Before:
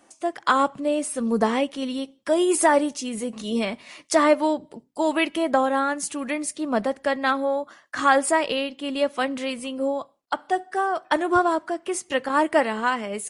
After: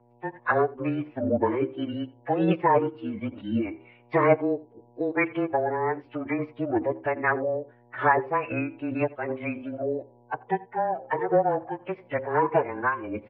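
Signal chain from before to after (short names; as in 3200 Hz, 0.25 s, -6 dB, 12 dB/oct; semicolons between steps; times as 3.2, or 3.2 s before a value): per-bin expansion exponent 1.5; air absorption 150 m; de-hum 130 Hz, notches 8; frequency shift +190 Hz; formant-preserving pitch shift -11 st; on a send: echo 86 ms -22.5 dB; on the sum: buzz 120 Hz, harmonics 9, -60 dBFS -4 dB/oct; mistuned SSB -120 Hz 200–2700 Hz; in parallel at +0.5 dB: compressor, threshold -34 dBFS, peak gain reduction 18 dB; on the sum: noise-modulated level, depth 65%; gain +2.5 dB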